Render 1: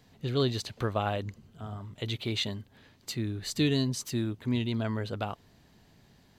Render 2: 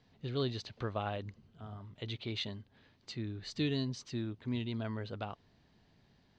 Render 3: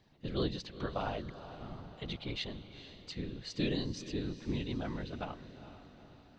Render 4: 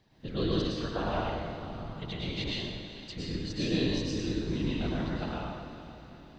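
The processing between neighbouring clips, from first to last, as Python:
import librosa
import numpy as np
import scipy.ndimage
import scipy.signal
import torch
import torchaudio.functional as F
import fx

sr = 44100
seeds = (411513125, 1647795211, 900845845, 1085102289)

y1 = scipy.signal.sosfilt(scipy.signal.butter(4, 5500.0, 'lowpass', fs=sr, output='sos'), x)
y1 = y1 * 10.0 ** (-7.0 / 20.0)
y2 = fx.whisperise(y1, sr, seeds[0])
y2 = fx.echo_diffused(y2, sr, ms=450, feedback_pct=52, wet_db=-12.5)
y3 = fx.rev_plate(y2, sr, seeds[1], rt60_s=1.3, hf_ratio=0.85, predelay_ms=90, drr_db=-5.0)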